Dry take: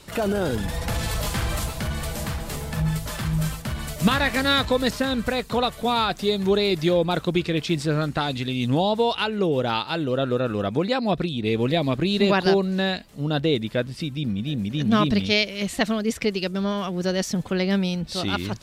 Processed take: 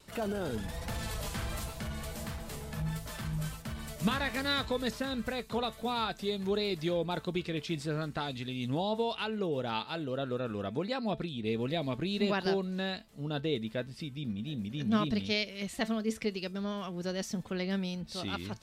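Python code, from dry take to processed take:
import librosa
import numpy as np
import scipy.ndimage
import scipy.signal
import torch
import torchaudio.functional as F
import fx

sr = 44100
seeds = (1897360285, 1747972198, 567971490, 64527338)

y = fx.vibrato(x, sr, rate_hz=1.4, depth_cents=27.0)
y = fx.comb_fb(y, sr, f0_hz=220.0, decay_s=0.2, harmonics='all', damping=0.0, mix_pct=50)
y = y * 10.0 ** (-6.0 / 20.0)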